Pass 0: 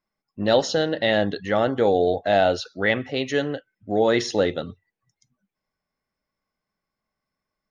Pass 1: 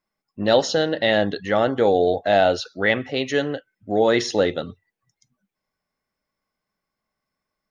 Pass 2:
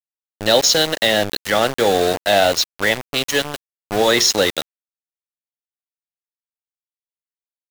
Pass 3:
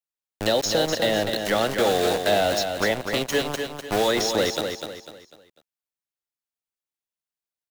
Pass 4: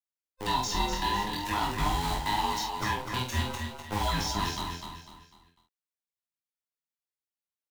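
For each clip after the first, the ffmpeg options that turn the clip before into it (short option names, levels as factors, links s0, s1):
-af "lowshelf=f=190:g=-3,volume=1.26"
-filter_complex "[0:a]acrossover=split=370|910[s0][s1][s2];[s2]alimiter=limit=0.141:level=0:latency=1:release=380[s3];[s0][s1][s3]amix=inputs=3:normalize=0,crystalizer=i=8.5:c=0,aeval=exprs='val(0)*gte(abs(val(0)),0.112)':c=same"
-filter_complex "[0:a]acrossover=split=420|1000[s0][s1][s2];[s0]acompressor=threshold=0.0501:ratio=4[s3];[s1]acompressor=threshold=0.0631:ratio=4[s4];[s2]acompressor=threshold=0.0447:ratio=4[s5];[s3][s4][s5]amix=inputs=3:normalize=0,asplit=2[s6][s7];[s7]aecho=0:1:249|498|747|996:0.473|0.175|0.0648|0.024[s8];[s6][s8]amix=inputs=2:normalize=0"
-filter_complex "[0:a]afftfilt=real='real(if(between(b,1,1008),(2*floor((b-1)/24)+1)*24-b,b),0)':imag='imag(if(between(b,1,1008),(2*floor((b-1)/24)+1)*24-b,b),0)*if(between(b,1,1008),-1,1)':win_size=2048:overlap=0.75,flanger=delay=19:depth=6.3:speed=0.48,asplit=2[s0][s1];[s1]adelay=47,volume=0.531[s2];[s0][s2]amix=inputs=2:normalize=0,volume=0.562"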